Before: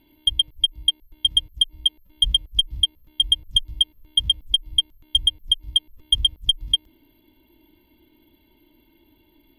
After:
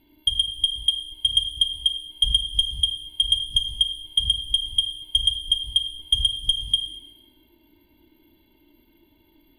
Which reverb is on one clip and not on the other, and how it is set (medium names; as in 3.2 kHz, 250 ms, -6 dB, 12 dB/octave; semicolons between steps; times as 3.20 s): plate-style reverb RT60 1 s, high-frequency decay 0.95×, DRR 5 dB; trim -2 dB